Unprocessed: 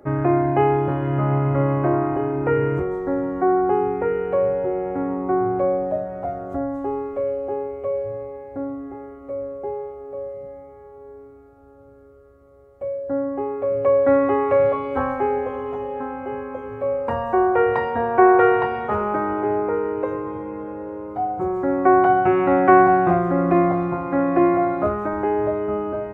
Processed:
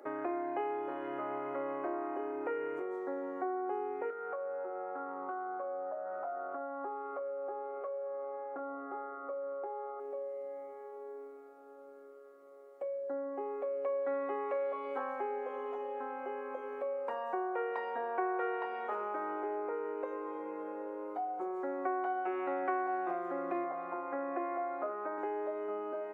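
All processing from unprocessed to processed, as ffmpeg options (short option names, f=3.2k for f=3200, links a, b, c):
-filter_complex "[0:a]asettb=1/sr,asplit=3[a][b][c];[a]atrim=end=4.104[d];[b]atrim=start=4.1:end=10,asetpts=PTS-STARTPTS,afade=t=in:d=0.004:c=qsin,afade=t=out:st=5.896:d=0.004:c=qsin,lowpass=f=1.3k:t=q:w=4.9,acompressor=threshold=-27dB:ratio=4:attack=3.2:release=140:knee=1:detection=peak,asplit=2[e][f];[f]adelay=23,volume=-8.5dB[g];[e][g]amix=inputs=2:normalize=0,atrim=end_sample=260190[h];[c]atrim=start=9.996[i];[d][h]acrossfade=d=0.004:c1=hsin:c2=qsin[j];[j][i]acrossfade=d=0.004:c1=qsin:c2=hsin,asettb=1/sr,asplit=3[k][l][m];[k]atrim=end=23.644[n];[l]atrim=start=23.64:end=25.18,asetpts=PTS-STARTPTS,afade=t=in:d=0.004:c=qsin,afade=t=out:st=1.536:d=0.004:c=qsin,highpass=190,lowpass=2.3k,bandreject=f=50:t=h:w=6,bandreject=f=100:t=h:w=6,bandreject=f=150:t=h:w=6,bandreject=f=200:t=h:w=6,bandreject=f=250:t=h:w=6,bandreject=f=300:t=h:w=6,bandreject=f=350:t=h:w=6,bandreject=f=400:t=h:w=6[o];[m]atrim=start=25.176[p];[n][o]acrossfade=d=0.004:c1=hsin:c2=qsin[q];[q][p]acrossfade=d=0.004:c1=qsin:c2=hsin,highpass=f=310:w=0.5412,highpass=f=310:w=1.3066,lowshelf=f=420:g=-4,acompressor=threshold=-38dB:ratio=2.5,volume=-2dB"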